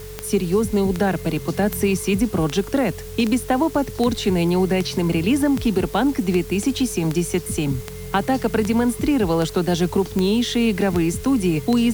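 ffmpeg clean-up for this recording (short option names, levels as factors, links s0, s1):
-af "adeclick=t=4,bandreject=f=46.4:t=h:w=4,bandreject=f=92.8:t=h:w=4,bandreject=f=139.2:t=h:w=4,bandreject=f=185.6:t=h:w=4,bandreject=f=430:w=30,afwtdn=0.0071"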